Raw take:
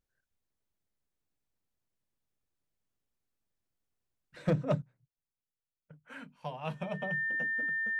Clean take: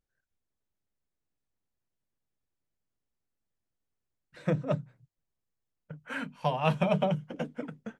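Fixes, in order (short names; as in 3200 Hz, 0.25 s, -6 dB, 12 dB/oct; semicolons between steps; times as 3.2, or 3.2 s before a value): clip repair -20 dBFS; notch 1800 Hz, Q 30; gain 0 dB, from 4.82 s +11 dB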